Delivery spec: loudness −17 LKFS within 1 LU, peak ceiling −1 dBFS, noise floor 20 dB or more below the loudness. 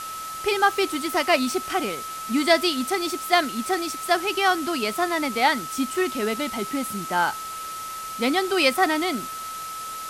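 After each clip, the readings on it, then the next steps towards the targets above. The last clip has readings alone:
interfering tone 1,300 Hz; level of the tone −32 dBFS; background noise floor −34 dBFS; target noise floor −44 dBFS; integrated loudness −24.0 LKFS; sample peak −6.0 dBFS; target loudness −17.0 LKFS
→ notch filter 1,300 Hz, Q 30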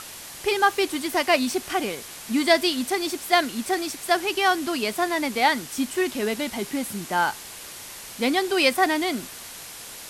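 interfering tone none found; background noise floor −40 dBFS; target noise floor −44 dBFS
→ broadband denoise 6 dB, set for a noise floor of −40 dBFS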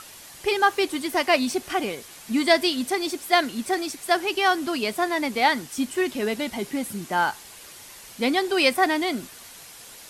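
background noise floor −45 dBFS; integrated loudness −24.0 LKFS; sample peak −6.5 dBFS; target loudness −17.0 LKFS
→ level +7 dB
brickwall limiter −1 dBFS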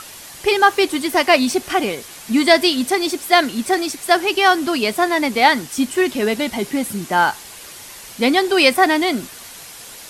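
integrated loudness −17.0 LKFS; sample peak −1.0 dBFS; background noise floor −38 dBFS

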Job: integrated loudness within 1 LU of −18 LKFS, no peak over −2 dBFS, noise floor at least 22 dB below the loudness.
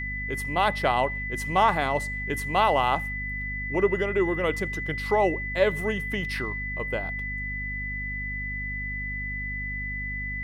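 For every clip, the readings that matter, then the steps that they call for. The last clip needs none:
mains hum 50 Hz; hum harmonics up to 250 Hz; level of the hum −33 dBFS; interfering tone 2,000 Hz; level of the tone −31 dBFS; integrated loudness −27.0 LKFS; sample peak −8.5 dBFS; target loudness −18.0 LKFS
→ mains-hum notches 50/100/150/200/250 Hz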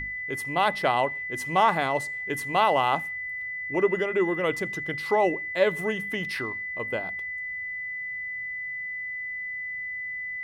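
mains hum none found; interfering tone 2,000 Hz; level of the tone −31 dBFS
→ notch filter 2,000 Hz, Q 30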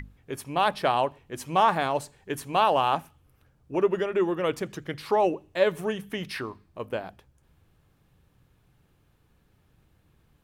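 interfering tone none found; integrated loudness −27.0 LKFS; sample peak −9.0 dBFS; target loudness −18.0 LKFS
→ level +9 dB
brickwall limiter −2 dBFS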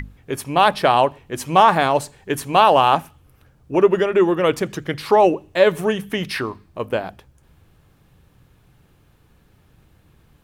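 integrated loudness −18.0 LKFS; sample peak −2.0 dBFS; background noise floor −57 dBFS

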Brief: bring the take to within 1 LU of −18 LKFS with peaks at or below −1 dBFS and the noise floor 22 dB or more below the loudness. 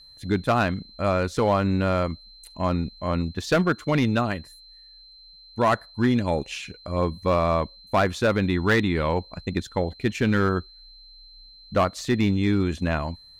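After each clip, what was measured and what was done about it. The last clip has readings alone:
share of clipped samples 0.6%; peaks flattened at −13.5 dBFS; interfering tone 4,100 Hz; level of the tone −47 dBFS; integrated loudness −24.5 LKFS; sample peak −13.5 dBFS; target loudness −18.0 LKFS
→ clipped peaks rebuilt −13.5 dBFS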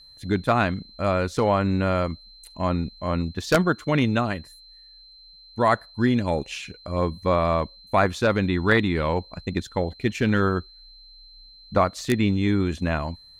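share of clipped samples 0.0%; interfering tone 4,100 Hz; level of the tone −47 dBFS
→ notch filter 4,100 Hz, Q 30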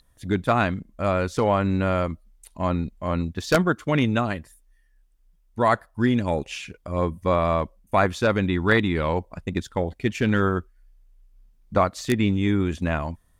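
interfering tone none found; integrated loudness −24.0 LKFS; sample peak −4.5 dBFS; target loudness −18.0 LKFS
→ level +6 dB
brickwall limiter −1 dBFS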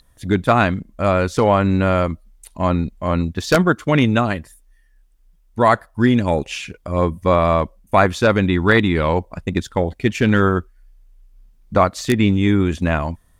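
integrated loudness −18.0 LKFS; sample peak −1.0 dBFS; background noise floor −55 dBFS

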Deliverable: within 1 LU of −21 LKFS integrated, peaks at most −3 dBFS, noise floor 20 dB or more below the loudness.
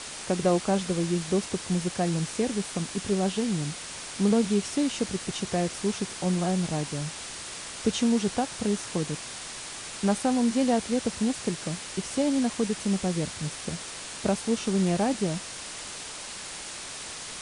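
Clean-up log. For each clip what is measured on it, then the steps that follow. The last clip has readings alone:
background noise floor −39 dBFS; target noise floor −49 dBFS; integrated loudness −28.5 LKFS; sample peak −12.0 dBFS; target loudness −21.0 LKFS
→ broadband denoise 10 dB, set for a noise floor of −39 dBFS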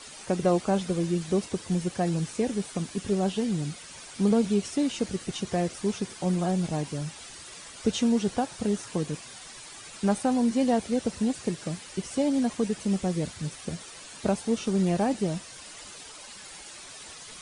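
background noise floor −45 dBFS; target noise floor −48 dBFS
→ broadband denoise 6 dB, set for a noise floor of −45 dBFS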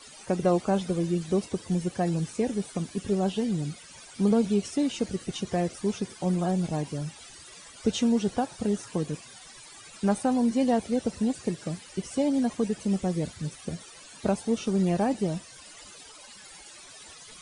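background noise floor −48 dBFS; target noise floor −49 dBFS
→ broadband denoise 6 dB, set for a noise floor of −48 dBFS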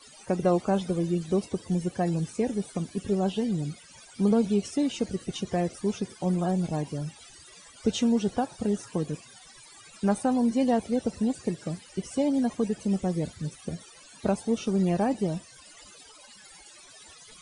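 background noise floor −51 dBFS; integrated loudness −28.5 LKFS; sample peak −13.0 dBFS; target loudness −21.0 LKFS
→ level +7.5 dB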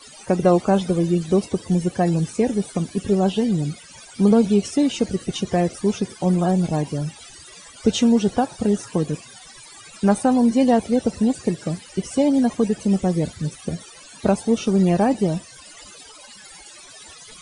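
integrated loudness −21.0 LKFS; sample peak −5.5 dBFS; background noise floor −44 dBFS

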